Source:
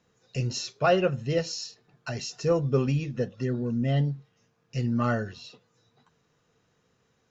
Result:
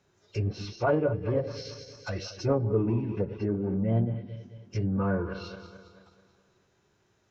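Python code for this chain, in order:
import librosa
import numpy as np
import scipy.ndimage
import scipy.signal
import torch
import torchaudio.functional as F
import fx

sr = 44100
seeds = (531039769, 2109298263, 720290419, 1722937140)

p1 = fx.reverse_delay_fb(x, sr, ms=109, feedback_pct=69, wet_db=-13.0)
p2 = 10.0 ** (-27.0 / 20.0) * np.tanh(p1 / 10.0 ** (-27.0 / 20.0))
p3 = p1 + F.gain(torch.from_numpy(p2), -5.5).numpy()
p4 = fx.env_lowpass_down(p3, sr, base_hz=1100.0, full_db=-21.0)
p5 = fx.pitch_keep_formants(p4, sr, semitones=-3.5)
y = F.gain(torch.from_numpy(p5), -3.0).numpy()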